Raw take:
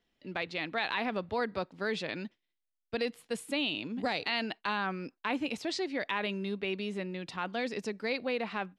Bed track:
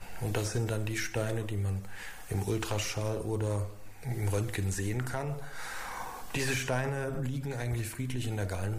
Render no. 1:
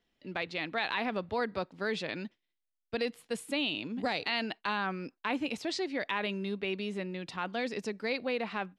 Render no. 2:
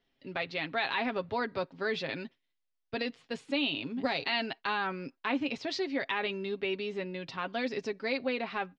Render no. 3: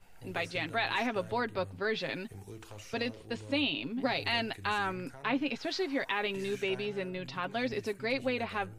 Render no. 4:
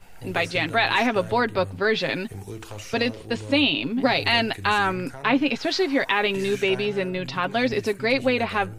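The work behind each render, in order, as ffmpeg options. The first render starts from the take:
-af anull
-af "lowpass=f=5.7k:w=0.5412,lowpass=f=5.7k:w=1.3066,aecho=1:1:7.4:0.52"
-filter_complex "[1:a]volume=-15.5dB[a];[0:a][a]amix=inputs=2:normalize=0"
-af "volume=10.5dB"

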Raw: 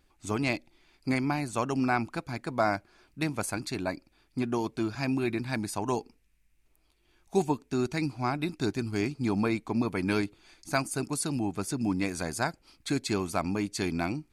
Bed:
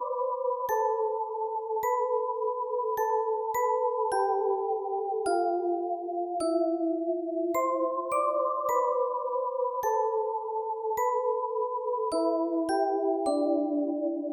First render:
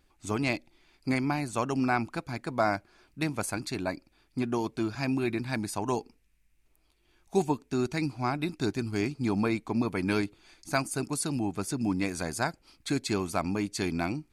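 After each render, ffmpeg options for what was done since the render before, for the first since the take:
-af anull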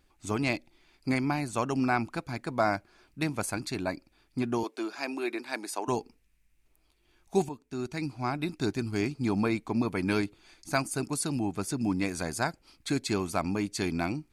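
-filter_complex "[0:a]asettb=1/sr,asplit=3[a][b][c];[a]atrim=end=4.634[d];[b]atrim=start=4.63:end=5.88,asetpts=PTS-STARTPTS,afade=t=in:d=0.004:c=qsin,afade=t=out:st=1.246:d=0.004:c=qsin,highpass=f=330:w=0.5412,highpass=f=330:w=1.3066[e];[c]atrim=start=5.876[f];[d][e]acrossfade=d=0.004:c1=hsin:c2=qsin[g];[g][f]acrossfade=d=0.004:c1=qsin:c2=hsin,asplit=2[h][i];[h]atrim=end=7.49,asetpts=PTS-STARTPTS,afade=t=out:st=7.486:d=0.004:c=hsin:silence=0.237137[j];[i]atrim=start=7.49,asetpts=PTS-STARTPTS,afade=t=in:d=1.38:c=qsin:silence=0.237137[k];[j][k]concat=n=2:v=0:a=1"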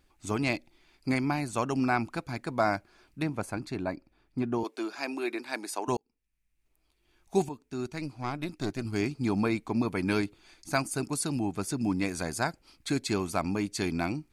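-filter_complex "[0:a]asettb=1/sr,asplit=3[a][b][c];[a]atrim=end=3.224[d];[b]atrim=start=3.22:end=4.65,asetpts=PTS-STARTPTS,afade=t=in:d=0.004:c=qsin,afade=t=out:st=1.426:d=0.004:c=qsin,highshelf=f=2.6k:g=-11.5[e];[c]atrim=start=4.646[f];[d][e]acrossfade=d=0.004:c1=hsin:c2=qsin[g];[g][f]acrossfade=d=0.004:c1=qsin:c2=hsin,asettb=1/sr,asplit=3[h][i][j];[h]atrim=end=7.904[k];[i]atrim=start=7.9:end=8.85,asetpts=PTS-STARTPTS,afade=t=in:d=0.004:c=qsin,afade=t=out:st=0.946:d=0.004:c=qsin,aeval=exprs='(tanh(11.2*val(0)+0.6)-tanh(0.6))/11.2':c=same[l];[j]atrim=start=8.846[m];[k][l]acrossfade=d=0.004:c1=hsin:c2=qsin[n];[n][m]acrossfade=d=0.004:c1=qsin:c2=hsin,asplit=2[o][p];[o]atrim=end=5.97,asetpts=PTS-STARTPTS,afade=t=out:st=5.966:d=0.004:c=hsin[q];[p]atrim=start=5.97,asetpts=PTS-STARTPTS,afade=t=in:d=1.4[r];[q][r]concat=n=2:v=0:a=1"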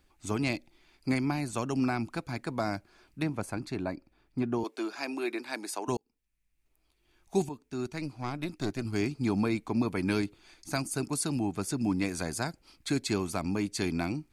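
-filter_complex "[0:a]acrossover=split=410|3000[a][b][c];[b]acompressor=threshold=-34dB:ratio=3[d];[a][d][c]amix=inputs=3:normalize=0"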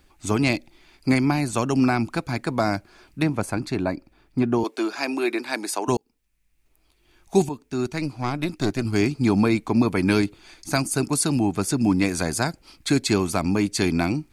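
-af "volume=9dB"

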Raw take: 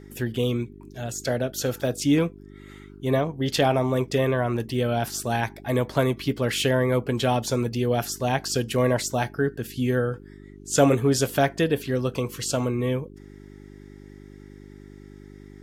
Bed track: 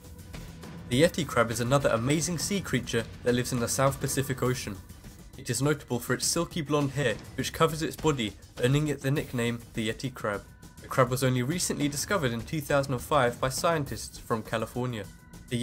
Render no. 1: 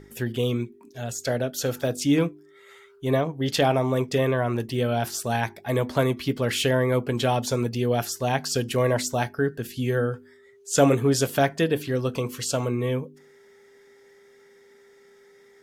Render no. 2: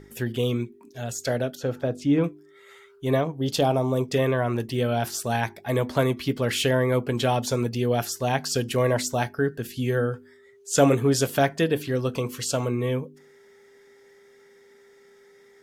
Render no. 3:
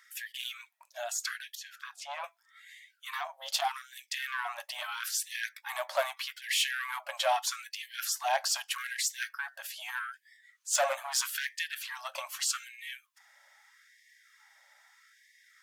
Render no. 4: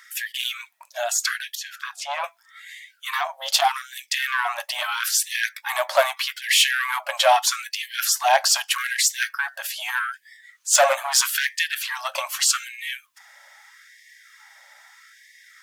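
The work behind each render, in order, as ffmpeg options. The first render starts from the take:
-af "bandreject=f=50:t=h:w=4,bandreject=f=100:t=h:w=4,bandreject=f=150:t=h:w=4,bandreject=f=200:t=h:w=4,bandreject=f=250:t=h:w=4,bandreject=f=300:t=h:w=4,bandreject=f=350:t=h:w=4"
-filter_complex "[0:a]asettb=1/sr,asplit=3[a][b][c];[a]atrim=end=1.554[d];[b]atrim=start=1.55:end=2.24,asetpts=PTS-STARTPTS,afade=t=in:d=0.004:c=qsin,afade=t=out:st=0.686:d=0.004:c=qsin,lowpass=f=1.2k:p=1[e];[c]atrim=start=2.236[f];[d][e]acrossfade=d=0.004:c1=hsin:c2=qsin[g];[g][f]acrossfade=d=0.004:c1=qsin:c2=hsin,asettb=1/sr,asplit=3[h][i][j];[h]atrim=end=3.394[k];[i]atrim=start=3.39:end=4.1,asetpts=PTS-STARTPTS,afade=t=in:d=0.004:c=qsin,afade=t=out:st=0.706:d=0.004:c=qsin,equalizer=f=1.9k:w=1.6:g=-12[l];[j]atrim=start=4.096[m];[k][l]acrossfade=d=0.004:c1=hsin:c2=qsin[n];[n][m]acrossfade=d=0.004:c1=qsin:c2=hsin"
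-af "asoftclip=type=tanh:threshold=-17.5dB,afftfilt=real='re*gte(b*sr/1024,520*pow(1700/520,0.5+0.5*sin(2*PI*0.8*pts/sr)))':imag='im*gte(b*sr/1024,520*pow(1700/520,0.5+0.5*sin(2*PI*0.8*pts/sr)))':win_size=1024:overlap=0.75"
-af "volume=11.5dB"

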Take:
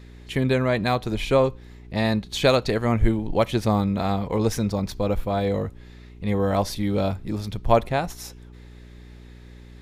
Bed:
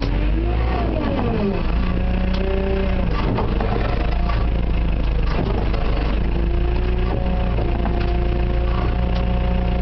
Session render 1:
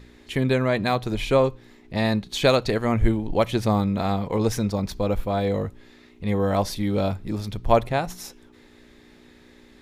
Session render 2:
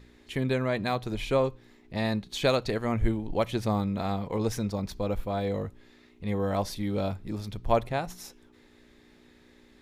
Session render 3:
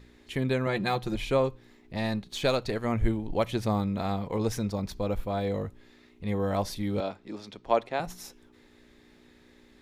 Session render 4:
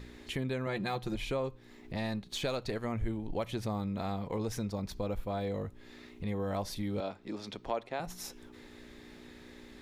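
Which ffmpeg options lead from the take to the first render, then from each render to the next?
-af "bandreject=f=60:t=h:w=4,bandreject=f=120:t=h:w=4,bandreject=f=180:t=h:w=4"
-af "volume=-6dB"
-filter_complex "[0:a]asettb=1/sr,asplit=3[a][b][c];[a]atrim=end=0.664[d];[b]atrim=start=0.66:end=1.16,asetpts=PTS-STARTPTS,afade=t=in:d=0.004:c=qsin,afade=t=out:st=0.496:d=0.004:c=qsin,aecho=1:1:5.7:0.65,atrim=end_sample=22050[e];[c]atrim=start=1.156[f];[d][e]acrossfade=d=0.004:c1=hsin:c2=qsin[g];[g][f]acrossfade=d=0.004:c1=qsin:c2=hsin,asettb=1/sr,asplit=3[h][i][j];[h]atrim=end=1.954[k];[i]atrim=start=1.95:end=2.84,asetpts=PTS-STARTPTS,afade=t=in:d=0.004:c=qsin,afade=t=out:st=0.886:d=0.004:c=qsin,aeval=exprs='if(lt(val(0),0),0.708*val(0),val(0))':c=same[l];[j]atrim=start=2.836[m];[k][l]acrossfade=d=0.004:c1=hsin:c2=qsin[n];[n][m]acrossfade=d=0.004:c1=qsin:c2=hsin,asettb=1/sr,asplit=3[o][p][q];[o]atrim=end=7.004[r];[p]atrim=start=7:end=8,asetpts=PTS-STARTPTS,afade=t=in:d=0.004:c=qsin,afade=t=out:st=0.996:d=0.004:c=qsin,acrossover=split=230 7400:gain=0.0794 1 0.0891[s][t][u];[s][t][u]amix=inputs=3:normalize=0[v];[q]atrim=start=7.996[w];[r][v]acrossfade=d=0.004:c1=hsin:c2=qsin[x];[x][w]acrossfade=d=0.004:c1=qsin:c2=hsin"
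-filter_complex "[0:a]asplit=2[a][b];[b]alimiter=limit=-19.5dB:level=0:latency=1:release=32,volume=-0.5dB[c];[a][c]amix=inputs=2:normalize=0,acompressor=threshold=-41dB:ratio=2"

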